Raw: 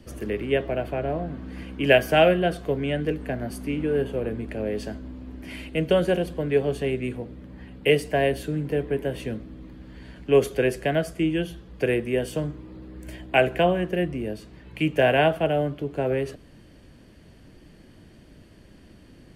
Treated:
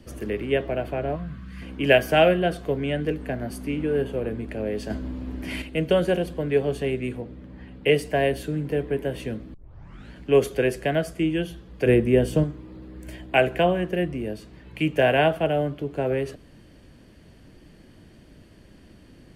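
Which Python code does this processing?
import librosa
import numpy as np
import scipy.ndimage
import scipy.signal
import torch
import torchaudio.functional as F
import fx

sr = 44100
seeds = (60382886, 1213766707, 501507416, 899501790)

y = fx.spec_box(x, sr, start_s=1.16, length_s=0.46, low_hz=220.0, high_hz=990.0, gain_db=-14)
y = fx.high_shelf(y, sr, hz=8000.0, db=-10.0, at=(7.21, 7.95))
y = fx.low_shelf(y, sr, hz=470.0, db=10.0, at=(11.86, 12.44))
y = fx.edit(y, sr, fx.clip_gain(start_s=4.9, length_s=0.72, db=6.0),
    fx.tape_start(start_s=9.54, length_s=0.59), tone=tone)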